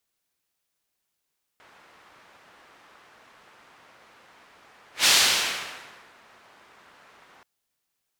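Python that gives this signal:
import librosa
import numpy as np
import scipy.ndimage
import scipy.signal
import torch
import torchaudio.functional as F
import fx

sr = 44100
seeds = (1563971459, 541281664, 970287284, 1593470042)

y = fx.whoosh(sr, seeds[0], length_s=5.83, peak_s=3.46, rise_s=0.14, fall_s=1.17, ends_hz=1300.0, peak_hz=4400.0, q=0.88, swell_db=37.0)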